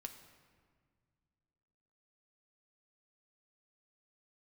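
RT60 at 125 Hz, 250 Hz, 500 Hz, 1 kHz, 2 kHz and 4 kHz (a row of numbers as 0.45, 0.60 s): 2.9, 2.7, 2.0, 1.7, 1.5, 1.1 s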